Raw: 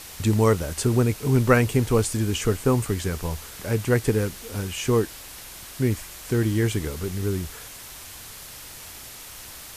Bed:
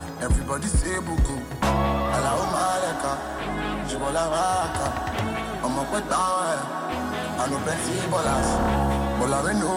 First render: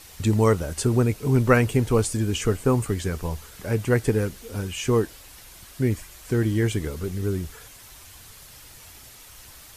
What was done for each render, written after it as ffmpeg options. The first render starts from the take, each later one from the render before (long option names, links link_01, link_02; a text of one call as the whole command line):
ffmpeg -i in.wav -af "afftdn=noise_reduction=7:noise_floor=-41" out.wav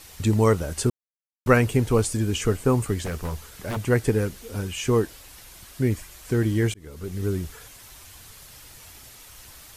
ffmpeg -i in.wav -filter_complex "[0:a]asettb=1/sr,asplit=3[link_01][link_02][link_03];[link_01]atrim=end=3.054[link_04];[link_02]atrim=start=3.05:end=3.77,asetpts=PTS-STARTPTS,afade=type=in:duration=0.004:curve=qsin,afade=type=out:start_time=0.716:duration=0.004:curve=qsin,aeval=exprs='0.0708*(abs(mod(val(0)/0.0708+3,4)-2)-1)':channel_layout=same[link_05];[link_03]atrim=start=3.766[link_06];[link_04][link_05]acrossfade=duration=0.004:curve1=hsin:curve2=qsin[link_07];[link_07][link_06]acrossfade=duration=0.004:curve1=qsin:curve2=hsin,asplit=4[link_08][link_09][link_10][link_11];[link_08]atrim=end=0.9,asetpts=PTS-STARTPTS,afade=type=out:start_time=0.896:duration=0.004:curve=hsin[link_12];[link_09]atrim=start=0.9:end=1.46,asetpts=PTS-STARTPTS,volume=0[link_13];[link_10]atrim=start=1.46:end=6.74,asetpts=PTS-STARTPTS,afade=type=in:duration=0.004:curve=hsin,afade=type=out:start_time=5.276:duration=0.004:curve=hsin[link_14];[link_11]atrim=start=6.74,asetpts=PTS-STARTPTS,afade=type=in:duration=0.5[link_15];[link_12][link_13][link_14][link_15]concat=n=4:v=0:a=1" out.wav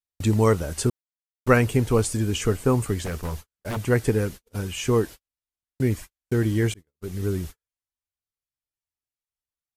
ffmpeg -i in.wav -af "agate=range=-52dB:threshold=-34dB:ratio=16:detection=peak" out.wav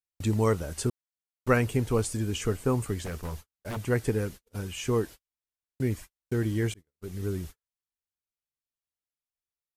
ffmpeg -i in.wav -af "volume=-5.5dB" out.wav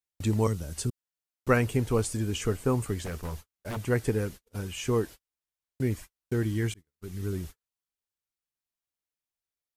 ffmpeg -i in.wav -filter_complex "[0:a]asettb=1/sr,asplit=3[link_01][link_02][link_03];[link_01]atrim=end=0.474[link_04];[link_02]atrim=start=0.47:end=1.49,asetpts=PTS-STARTPTS,afade=type=in:duration=0.004:curve=qsin,afade=type=out:start_time=1.016:duration=0.004:curve=qsin,acrossover=split=260|3000[link_05][link_06][link_07];[link_06]acompressor=threshold=-51dB:ratio=2:attack=3.2:release=140:knee=2.83:detection=peak[link_08];[link_05][link_08][link_07]amix=inputs=3:normalize=0[link_09];[link_03]atrim=start=1.486[link_10];[link_04][link_09]acrossfade=duration=0.004:curve1=hsin:curve2=qsin[link_11];[link_11][link_10]acrossfade=duration=0.004:curve1=qsin:curve2=hsin,asettb=1/sr,asplit=3[link_12][link_13][link_14];[link_12]atrim=end=6.434[link_15];[link_13]atrim=start=6.43:end=7.33,asetpts=PTS-STARTPTS,afade=type=in:duration=0.004:curve=qsin,afade=type=out:start_time=0.896:duration=0.004:curve=qsin,equalizer=frequency=550:width=1.5:gain=-6.5[link_16];[link_14]atrim=start=7.326[link_17];[link_15][link_16]acrossfade=duration=0.004:curve1=hsin:curve2=qsin[link_18];[link_18][link_17]acrossfade=duration=0.004:curve1=qsin:curve2=hsin" out.wav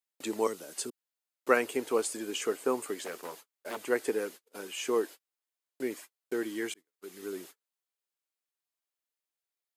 ffmpeg -i in.wav -af "highpass=frequency=310:width=0.5412,highpass=frequency=310:width=1.3066,bandreject=frequency=5700:width=19" out.wav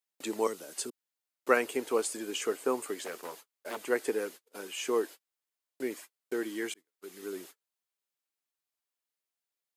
ffmpeg -i in.wav -af "highpass=frequency=150:poles=1" out.wav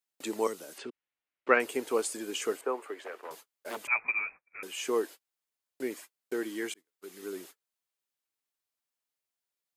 ffmpeg -i in.wav -filter_complex "[0:a]asettb=1/sr,asplit=3[link_01][link_02][link_03];[link_01]atrim=end=0.784[link_04];[link_02]atrim=start=0.78:end=1.6,asetpts=PTS-STARTPTS,afade=type=in:duration=0.004:curve=qsin,afade=type=out:start_time=0.816:duration=0.004:curve=qsin,lowpass=frequency=2500:width_type=q:width=1.6[link_05];[link_03]atrim=start=1.596[link_06];[link_04][link_05]acrossfade=duration=0.004:curve1=hsin:curve2=qsin[link_07];[link_07][link_06]acrossfade=duration=0.004:curve1=qsin:curve2=hsin,asettb=1/sr,asplit=3[link_08][link_09][link_10];[link_08]atrim=end=2.614[link_11];[link_09]atrim=start=2.61:end=3.31,asetpts=PTS-STARTPTS,afade=type=in:duration=0.004:curve=qsin,afade=type=out:start_time=0.696:duration=0.004:curve=qsin,acrossover=split=330 2800:gain=0.0631 1 0.141[link_12][link_13][link_14];[link_12][link_13][link_14]amix=inputs=3:normalize=0[link_15];[link_10]atrim=start=3.306[link_16];[link_11][link_15]acrossfade=duration=0.004:curve1=hsin:curve2=qsin[link_17];[link_17][link_16]acrossfade=duration=0.004:curve1=qsin:curve2=hsin,asettb=1/sr,asplit=3[link_18][link_19][link_20];[link_18]atrim=end=3.874[link_21];[link_19]atrim=start=3.87:end=4.63,asetpts=PTS-STARTPTS,afade=type=in:duration=0.004:curve=qsin,afade=type=out:start_time=0.756:duration=0.004:curve=qsin,lowpass=frequency=2400:width_type=q:width=0.5098,lowpass=frequency=2400:width_type=q:width=0.6013,lowpass=frequency=2400:width_type=q:width=0.9,lowpass=frequency=2400:width_type=q:width=2.563,afreqshift=-2800[link_22];[link_20]atrim=start=4.626[link_23];[link_21][link_22]acrossfade=duration=0.004:curve1=hsin:curve2=qsin[link_24];[link_24][link_23]acrossfade=duration=0.004:curve1=qsin:curve2=hsin" out.wav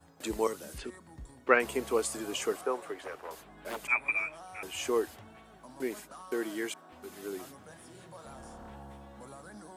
ffmpeg -i in.wav -i bed.wav -filter_complex "[1:a]volume=-25.5dB[link_01];[0:a][link_01]amix=inputs=2:normalize=0" out.wav